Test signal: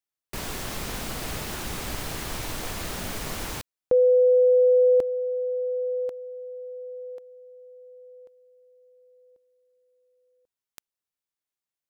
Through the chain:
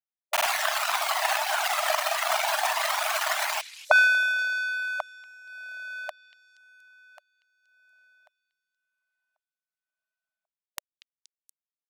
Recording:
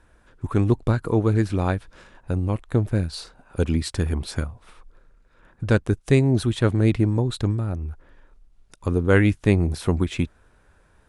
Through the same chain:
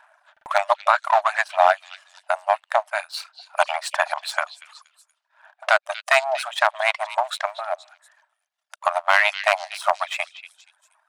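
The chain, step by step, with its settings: reverb removal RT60 1.5 s; high shelf 2900 Hz -11.5 dB; in parallel at -1 dB: compressor, threshold -32 dBFS; on the sum: hard clip -7 dBFS; phaser 0.25 Hz, delay 1.7 ms, feedback 33%; power-law curve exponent 1.4; brick-wall FIR high-pass 590 Hz; on a send: delay with a stepping band-pass 0.237 s, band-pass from 3400 Hz, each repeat 0.7 oct, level -11 dB; on the sum: maximiser +20.5 dB; stuck buffer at 0.32, samples 2048, times 2; gain -1.5 dB

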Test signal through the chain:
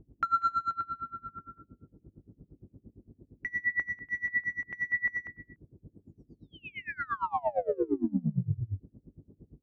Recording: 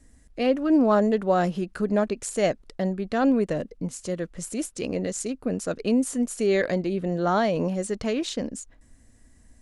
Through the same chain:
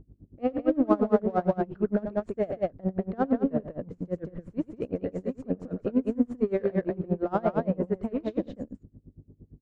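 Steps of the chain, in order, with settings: LPF 1100 Hz 12 dB/oct; gate -46 dBFS, range -36 dB; band noise 44–330 Hz -55 dBFS; in parallel at -9.5 dB: soft clip -28 dBFS; on the sum: hum 50 Hz, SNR 22 dB; on a send: loudspeakers at several distances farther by 31 m -11 dB, 66 m -3 dB; on the sum: dB-linear tremolo 8.7 Hz, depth 26 dB

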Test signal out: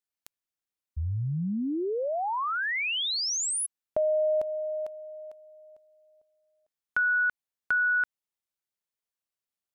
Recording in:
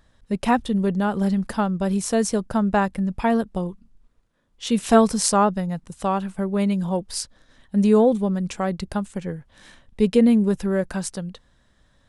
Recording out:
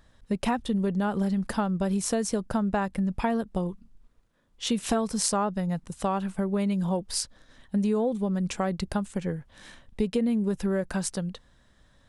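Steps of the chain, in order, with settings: compressor 6:1, threshold -23 dBFS

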